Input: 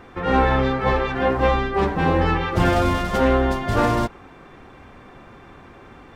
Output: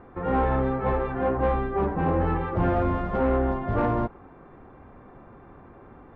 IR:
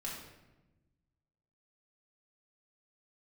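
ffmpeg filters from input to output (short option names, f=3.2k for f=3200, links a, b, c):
-af "lowpass=1.2k,asoftclip=type=tanh:threshold=-12dB,volume=-3dB"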